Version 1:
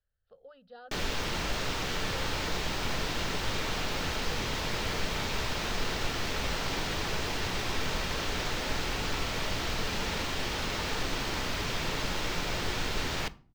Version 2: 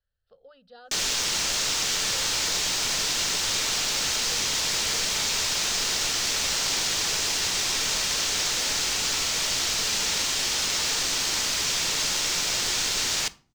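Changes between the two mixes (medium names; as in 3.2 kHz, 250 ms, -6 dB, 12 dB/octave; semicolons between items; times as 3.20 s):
background: add tilt EQ +2 dB/octave; master: add peaking EQ 7 kHz +12.5 dB 1.6 oct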